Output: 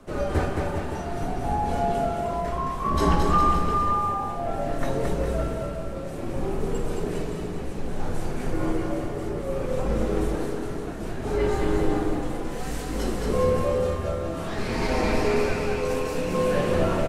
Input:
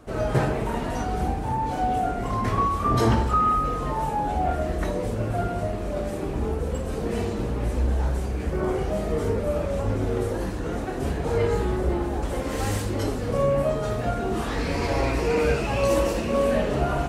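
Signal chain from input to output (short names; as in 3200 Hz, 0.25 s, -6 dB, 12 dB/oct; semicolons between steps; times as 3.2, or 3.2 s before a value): tremolo 0.6 Hz, depth 59%; bouncing-ball echo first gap 0.22 s, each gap 0.85×, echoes 5; frequency shift -50 Hz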